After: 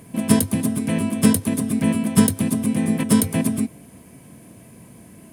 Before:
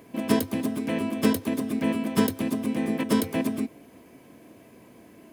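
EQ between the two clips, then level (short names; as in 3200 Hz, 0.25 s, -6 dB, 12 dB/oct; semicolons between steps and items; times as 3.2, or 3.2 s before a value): resonant low shelf 230 Hz +8.5 dB, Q 1.5; bell 9500 Hz +14.5 dB 0.7 oct; +2.5 dB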